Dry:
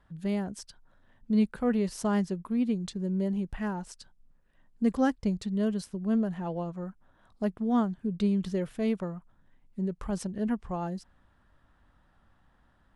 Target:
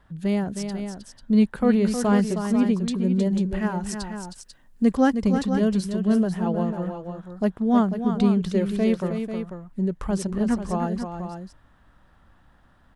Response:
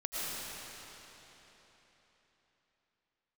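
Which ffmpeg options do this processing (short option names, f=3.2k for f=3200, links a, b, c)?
-filter_complex "[0:a]asettb=1/sr,asplit=3[a][b][c];[a]atrim=end=3.864[d];[b]atrim=start=3.86:end=4.85,asetpts=PTS-STARTPTS,afade=t=in:d=0.004:c=qsin,afade=t=out:st=0.986:d=0.004:c=qsin,highshelf=f=4k:g=8[e];[c]atrim=start=4.846[f];[d][e]acrossfade=d=0.004:c1=hsin:c2=qsin[g];[g][f]acrossfade=d=0.004:c1=qsin:c2=hsin,asplit=2[h][i];[i]aecho=0:1:314|493:0.398|0.355[j];[h][j]amix=inputs=2:normalize=0,volume=6.5dB"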